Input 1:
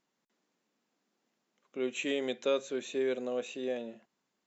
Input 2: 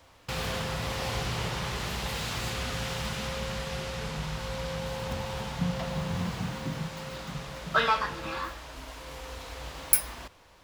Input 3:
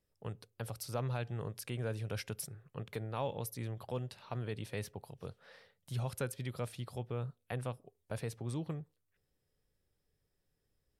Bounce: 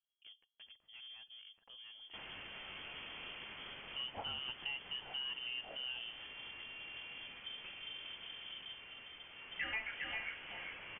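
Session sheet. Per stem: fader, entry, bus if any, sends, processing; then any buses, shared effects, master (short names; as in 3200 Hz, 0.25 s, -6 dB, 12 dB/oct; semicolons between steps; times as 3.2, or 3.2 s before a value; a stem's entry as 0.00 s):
-1.5 dB, 2.20 s, no send, no echo send, compressor 2.5:1, threshold -33 dBFS, peak gain reduction 6.5 dB
9.25 s -16 dB -> 9.73 s -6 dB, 1.85 s, no send, echo send -5.5 dB, HPF 150 Hz 12 dB/oct
-16.0 dB, 0.00 s, no send, echo send -22.5 dB, overloaded stage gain 34 dB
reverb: off
echo: echo 0.402 s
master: inverted band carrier 3300 Hz; compressor 2:1, threshold -44 dBFS, peak gain reduction 10 dB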